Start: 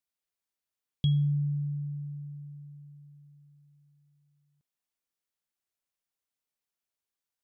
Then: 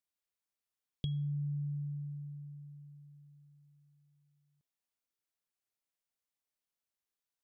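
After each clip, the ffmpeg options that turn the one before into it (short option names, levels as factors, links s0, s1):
-af "acompressor=threshold=0.0316:ratio=6,volume=0.668"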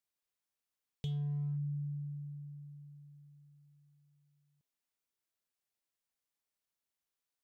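-af "volume=44.7,asoftclip=hard,volume=0.0224"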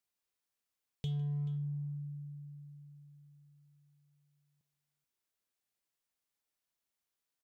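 -af "aecho=1:1:154|432:0.106|0.133,volume=1.12"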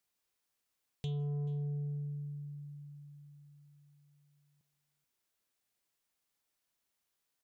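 -af "asoftclip=type=tanh:threshold=0.0126,volume=1.68"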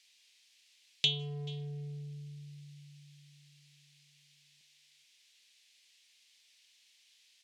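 -af "highpass=170,lowpass=3000,highshelf=f=2100:g=9.5,aexciter=amount=12.4:drive=4.7:freq=2000"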